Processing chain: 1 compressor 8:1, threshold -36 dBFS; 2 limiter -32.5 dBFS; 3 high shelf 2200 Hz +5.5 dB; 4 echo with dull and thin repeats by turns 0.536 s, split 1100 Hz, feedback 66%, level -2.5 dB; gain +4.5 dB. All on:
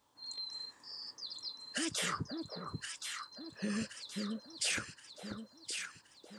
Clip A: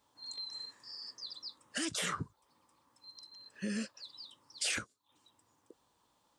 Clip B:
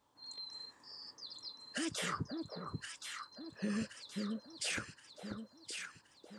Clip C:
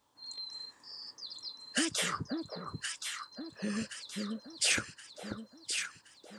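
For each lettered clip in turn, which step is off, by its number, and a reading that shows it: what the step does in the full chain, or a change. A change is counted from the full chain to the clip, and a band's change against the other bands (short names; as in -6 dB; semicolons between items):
4, echo-to-direct -3.5 dB to none; 3, 8 kHz band -4.5 dB; 2, crest factor change +4.5 dB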